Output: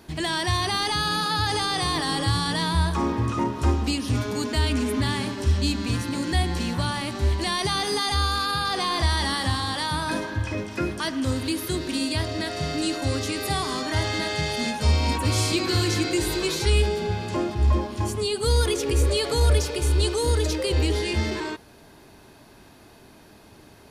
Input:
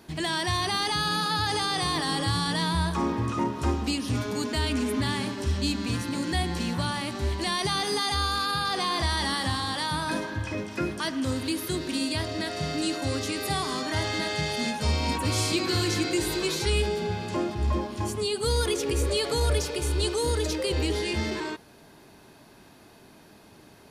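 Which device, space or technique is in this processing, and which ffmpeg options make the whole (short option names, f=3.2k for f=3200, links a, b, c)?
low shelf boost with a cut just above: -af "lowshelf=f=110:g=7,equalizer=f=170:t=o:w=0.77:g=-3.5,volume=2dB"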